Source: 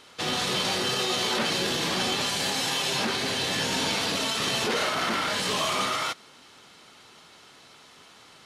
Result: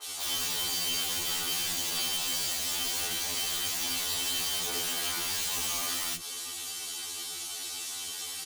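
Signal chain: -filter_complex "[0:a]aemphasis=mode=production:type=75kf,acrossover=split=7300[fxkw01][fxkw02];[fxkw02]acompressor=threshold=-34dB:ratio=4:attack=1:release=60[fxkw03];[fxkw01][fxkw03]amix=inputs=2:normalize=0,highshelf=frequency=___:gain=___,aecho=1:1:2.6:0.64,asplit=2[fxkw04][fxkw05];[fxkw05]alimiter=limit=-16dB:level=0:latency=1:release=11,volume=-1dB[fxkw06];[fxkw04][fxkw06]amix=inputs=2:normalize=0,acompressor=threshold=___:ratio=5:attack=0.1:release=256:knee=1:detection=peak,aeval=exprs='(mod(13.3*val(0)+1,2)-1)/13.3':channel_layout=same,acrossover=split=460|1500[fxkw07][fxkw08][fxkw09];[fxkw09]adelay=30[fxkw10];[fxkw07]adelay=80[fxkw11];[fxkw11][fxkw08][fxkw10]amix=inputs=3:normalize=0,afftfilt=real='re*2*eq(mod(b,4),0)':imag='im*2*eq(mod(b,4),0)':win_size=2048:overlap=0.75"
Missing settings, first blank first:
5.4k, 9, -23dB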